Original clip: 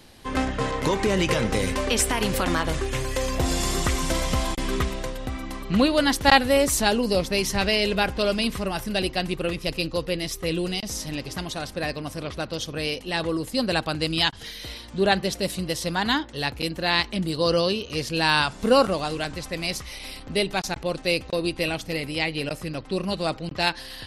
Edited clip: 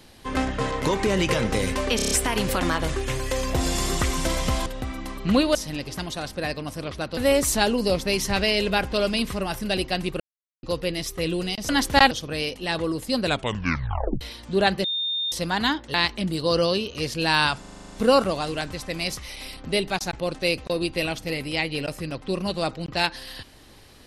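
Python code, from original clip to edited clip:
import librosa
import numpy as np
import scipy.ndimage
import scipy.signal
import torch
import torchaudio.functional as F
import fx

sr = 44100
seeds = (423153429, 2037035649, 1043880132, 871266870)

y = fx.edit(x, sr, fx.stutter(start_s=1.96, slice_s=0.03, count=6),
    fx.cut(start_s=4.51, length_s=0.6),
    fx.swap(start_s=6.0, length_s=0.42, other_s=10.94, other_length_s=1.62),
    fx.silence(start_s=9.45, length_s=0.43),
    fx.tape_stop(start_s=13.69, length_s=0.97),
    fx.bleep(start_s=15.29, length_s=0.48, hz=3640.0, db=-23.5),
    fx.cut(start_s=16.39, length_s=0.5),
    fx.stutter(start_s=18.55, slice_s=0.04, count=9), tone=tone)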